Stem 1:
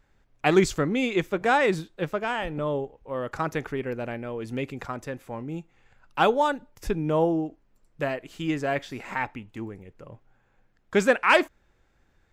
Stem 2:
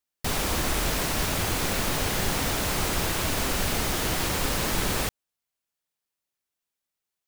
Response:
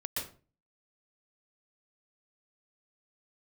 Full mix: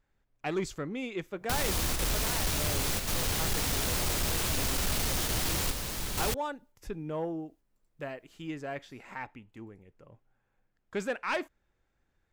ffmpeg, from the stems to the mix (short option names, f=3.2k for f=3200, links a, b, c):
-filter_complex "[0:a]volume=-10.5dB,asplit=2[a][b];[1:a]acrossover=split=130|3000[c][d][e];[d]acompressor=threshold=-33dB:ratio=6[f];[c][f][e]amix=inputs=3:normalize=0,adelay=1250,volume=0.5dB[g];[b]apad=whole_len=375759[h];[g][h]sidechaingate=range=-7dB:threshold=-57dB:ratio=16:detection=peak[i];[a][i]amix=inputs=2:normalize=0,asoftclip=type=tanh:threshold=-23dB"